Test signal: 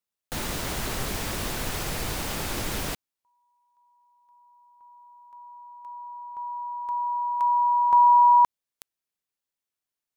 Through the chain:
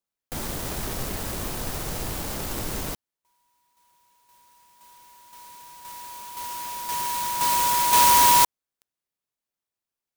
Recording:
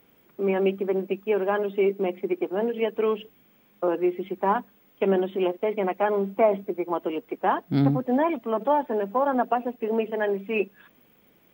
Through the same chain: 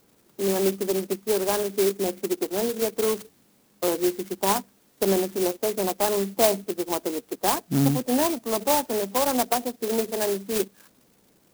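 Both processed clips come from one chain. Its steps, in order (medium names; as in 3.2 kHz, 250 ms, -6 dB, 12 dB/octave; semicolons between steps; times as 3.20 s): sampling jitter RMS 0.12 ms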